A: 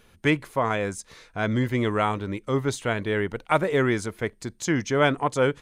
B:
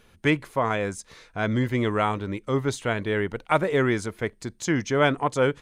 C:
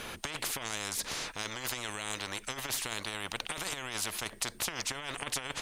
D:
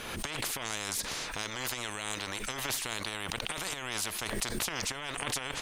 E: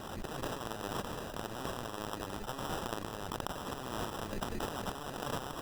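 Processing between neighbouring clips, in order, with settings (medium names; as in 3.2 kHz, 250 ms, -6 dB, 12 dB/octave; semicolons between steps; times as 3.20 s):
treble shelf 9.9 kHz -4 dB
compressor with a negative ratio -25 dBFS, ratio -0.5; spectrum-flattening compressor 10:1; trim -5.5 dB
swell ahead of each attack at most 35 dB/s
sample-rate reducer 2.2 kHz, jitter 0%; trim -3.5 dB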